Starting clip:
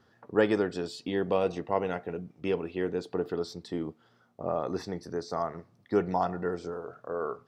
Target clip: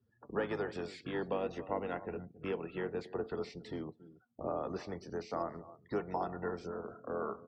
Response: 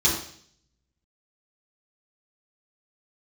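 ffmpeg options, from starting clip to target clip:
-filter_complex "[0:a]highshelf=frequency=3100:gain=3.5,aecho=1:1:277:0.1,asplit=3[link_01][link_02][link_03];[link_02]asetrate=22050,aresample=44100,atempo=2,volume=-7dB[link_04];[link_03]asetrate=33038,aresample=44100,atempo=1.33484,volume=-12dB[link_05];[link_01][link_04][link_05]amix=inputs=3:normalize=0,acrossover=split=190|390[link_06][link_07][link_08];[link_06]acompressor=threshold=-45dB:ratio=4[link_09];[link_07]acompressor=threshold=-43dB:ratio=4[link_10];[link_08]acompressor=threshold=-29dB:ratio=4[link_11];[link_09][link_10][link_11]amix=inputs=3:normalize=0,afftdn=noise_reduction=24:noise_floor=-53,acrossover=split=2600[link_12][link_13];[link_13]acompressor=threshold=-50dB:ratio=4:attack=1:release=60[link_14];[link_12][link_14]amix=inputs=2:normalize=0,volume=-4dB"

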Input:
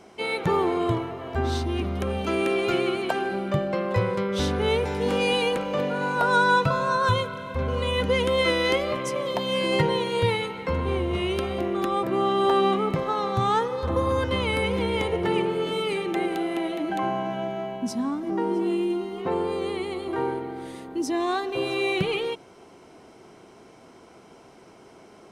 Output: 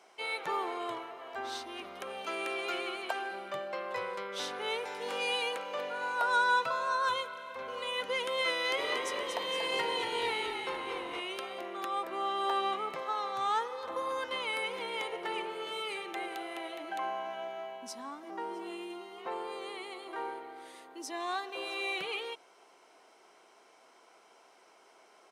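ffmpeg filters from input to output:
ffmpeg -i in.wav -filter_complex "[0:a]highpass=680,asplit=3[link_01][link_02][link_03];[link_01]afade=type=out:start_time=8.77:duration=0.02[link_04];[link_02]asplit=8[link_05][link_06][link_07][link_08][link_09][link_10][link_11][link_12];[link_06]adelay=234,afreqshift=-44,volume=-5dB[link_13];[link_07]adelay=468,afreqshift=-88,volume=-10.2dB[link_14];[link_08]adelay=702,afreqshift=-132,volume=-15.4dB[link_15];[link_09]adelay=936,afreqshift=-176,volume=-20.6dB[link_16];[link_10]adelay=1170,afreqshift=-220,volume=-25.8dB[link_17];[link_11]adelay=1404,afreqshift=-264,volume=-31dB[link_18];[link_12]adelay=1638,afreqshift=-308,volume=-36.2dB[link_19];[link_05][link_13][link_14][link_15][link_16][link_17][link_18][link_19]amix=inputs=8:normalize=0,afade=type=in:start_time=8.77:duration=0.02,afade=type=out:start_time=11.19:duration=0.02[link_20];[link_03]afade=type=in:start_time=11.19:duration=0.02[link_21];[link_04][link_20][link_21]amix=inputs=3:normalize=0,volume=-6dB" out.wav

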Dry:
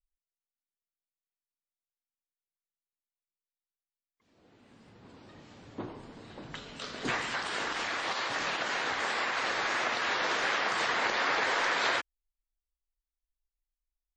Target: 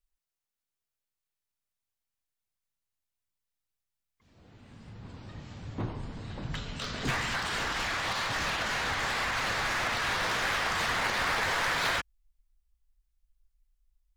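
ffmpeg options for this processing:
ffmpeg -i in.wav -filter_complex "[0:a]asplit=2[link_01][link_02];[link_02]aeval=exprs='0.0211*(abs(mod(val(0)/0.0211+3,4)-2)-1)':channel_layout=same,volume=-4dB[link_03];[link_01][link_03]amix=inputs=2:normalize=0,asubboost=boost=5.5:cutoff=140" out.wav

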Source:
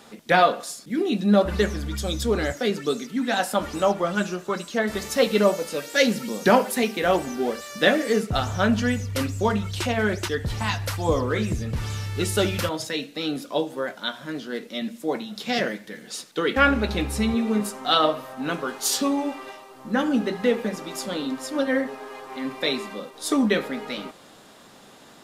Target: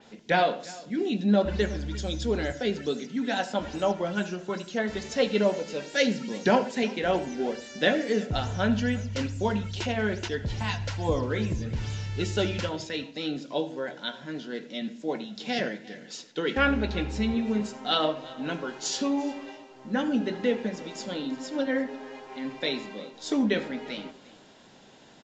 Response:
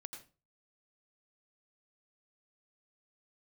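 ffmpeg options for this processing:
-filter_complex "[0:a]equalizer=frequency=2900:width_type=o:width=0.34:gain=2.5,bandreject=frequency=1200:width=6.1,aecho=1:1:350:0.0891,asplit=2[link_01][link_02];[1:a]atrim=start_sample=2205,asetrate=48510,aresample=44100,lowshelf=frequency=430:gain=9[link_03];[link_02][link_03]afir=irnorm=-1:irlink=0,volume=-6dB[link_04];[link_01][link_04]amix=inputs=2:normalize=0,aresample=16000,aresample=44100,adynamicequalizer=threshold=0.0158:dfrequency=4700:dqfactor=0.7:tfrequency=4700:tqfactor=0.7:attack=5:release=100:ratio=0.375:range=2:mode=cutabove:tftype=highshelf,volume=-7dB"

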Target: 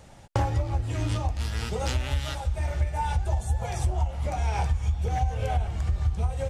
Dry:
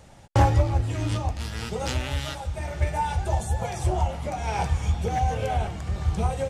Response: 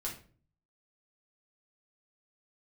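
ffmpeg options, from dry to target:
-af "asubboost=boost=4.5:cutoff=89,acompressor=threshold=-22dB:ratio=6"

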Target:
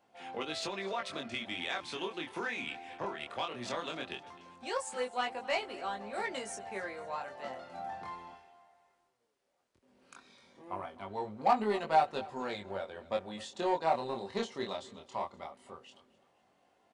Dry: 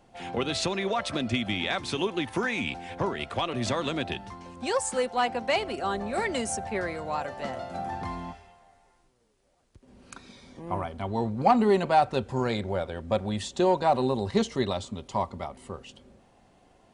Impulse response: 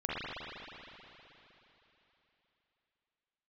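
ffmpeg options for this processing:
-af "highpass=frequency=540:poles=1,equalizer=frequency=9200:width=0.48:gain=-5,aeval=exprs='0.282*(cos(1*acos(clip(val(0)/0.282,-1,1)))-cos(1*PI/2))+0.01*(cos(7*acos(clip(val(0)/0.282,-1,1)))-cos(7*PI/2))':channel_layout=same,flanger=delay=19:depth=6.8:speed=0.17,aecho=1:1:256|512|768:0.0944|0.0406|0.0175,volume=-1dB"

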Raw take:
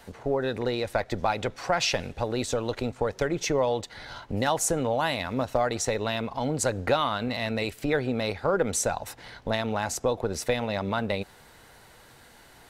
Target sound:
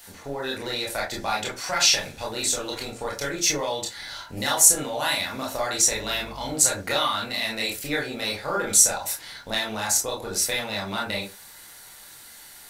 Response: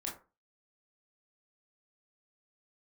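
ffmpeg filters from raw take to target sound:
-filter_complex "[0:a]crystalizer=i=9.5:c=0[link_01];[1:a]atrim=start_sample=2205,afade=type=out:start_time=0.19:duration=0.01,atrim=end_sample=8820[link_02];[link_01][link_02]afir=irnorm=-1:irlink=0,asettb=1/sr,asplit=3[link_03][link_04][link_05];[link_03]atrim=end=5.914[link_06];[link_04]atrim=start=5.91:end=6.54,asetpts=PTS-STARTPTS,afade=type=in:duration=0.004:curve=qsin,afade=type=out:start_time=0.626:duration=0.004:curve=qsin,aeval=exprs='val(0)+0.0158*(sin(2*PI*50*n/s)+sin(2*PI*2*50*n/s)/2+sin(2*PI*3*50*n/s)/3+sin(2*PI*4*50*n/s)/4+sin(2*PI*5*50*n/s)/5)':channel_layout=same[link_07];[link_05]atrim=start=6.536[link_08];[link_06][link_07]acrossfade=duration=0.004:curve1=hsin:curve2=qsin[link_09];[link_09][link_08]acrossfade=duration=0.004:curve1=qsin:curve2=hsin,volume=-5.5dB"

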